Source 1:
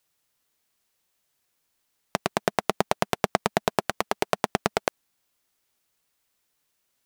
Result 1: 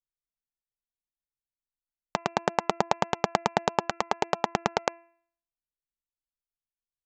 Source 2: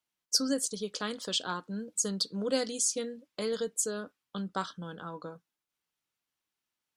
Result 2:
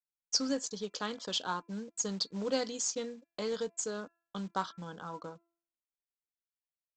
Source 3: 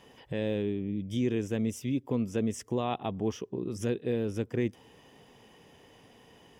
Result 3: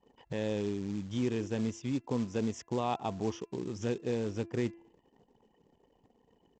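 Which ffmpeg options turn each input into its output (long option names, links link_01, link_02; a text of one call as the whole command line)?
ffmpeg -i in.wav -af "anlmdn=0.00251,aresample=16000,acrusher=bits=5:mode=log:mix=0:aa=0.000001,aresample=44100,equalizer=frequency=900:width_type=o:width=0.56:gain=6,bandreject=frequency=338.1:width_type=h:width=4,bandreject=frequency=676.2:width_type=h:width=4,bandreject=frequency=1014.3:width_type=h:width=4,bandreject=frequency=1352.4:width_type=h:width=4,bandreject=frequency=1690.5:width_type=h:width=4,bandreject=frequency=2028.6:width_type=h:width=4,bandreject=frequency=2366.7:width_type=h:width=4,bandreject=frequency=2704.8:width_type=h:width=4,volume=-3dB" out.wav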